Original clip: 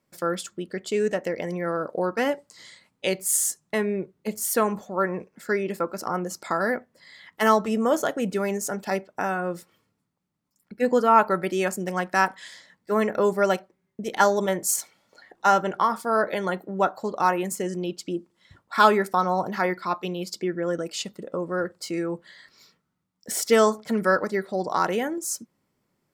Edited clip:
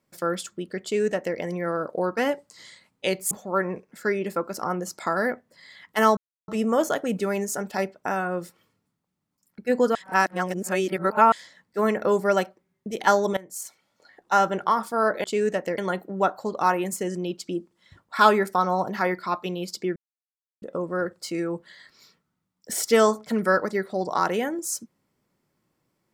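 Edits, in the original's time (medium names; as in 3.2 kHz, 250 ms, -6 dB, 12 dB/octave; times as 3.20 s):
0.83–1.37 s: copy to 16.37 s
3.31–4.75 s: delete
7.61 s: insert silence 0.31 s
11.08–12.45 s: reverse
14.50–15.63 s: fade in, from -19.5 dB
20.55–21.21 s: mute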